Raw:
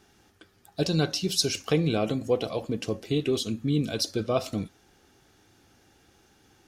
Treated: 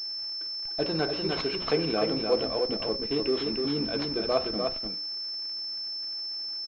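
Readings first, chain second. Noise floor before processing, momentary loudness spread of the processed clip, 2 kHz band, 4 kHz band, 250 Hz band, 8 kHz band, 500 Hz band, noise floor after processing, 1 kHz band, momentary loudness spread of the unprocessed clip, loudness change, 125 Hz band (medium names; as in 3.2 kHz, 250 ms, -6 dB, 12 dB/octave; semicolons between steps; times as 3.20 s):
-62 dBFS, 5 LU, +0.5 dB, +4.5 dB, -2.5 dB, under -20 dB, +1.0 dB, -35 dBFS, +2.0 dB, 7 LU, -1.0 dB, -9.5 dB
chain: high-pass 300 Hz 12 dB/octave; on a send: delay 299 ms -5 dB; on the sum: crackle 460 per s -44 dBFS; hum notches 60/120/180/240/300/360/420/480/540 Hz; in parallel at -11.5 dB: Schmitt trigger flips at -33 dBFS; on the sum: class-D stage that switches slowly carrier 5.3 kHz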